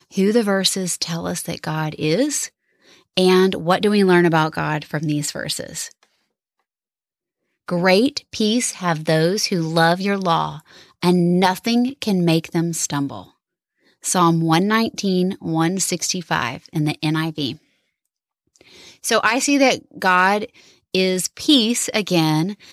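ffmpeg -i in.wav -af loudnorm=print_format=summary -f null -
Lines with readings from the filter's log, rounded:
Input Integrated:    -18.9 LUFS
Input True Peak:      -2.4 dBTP
Input LRA:             3.9 LU
Input Threshold:     -29.4 LUFS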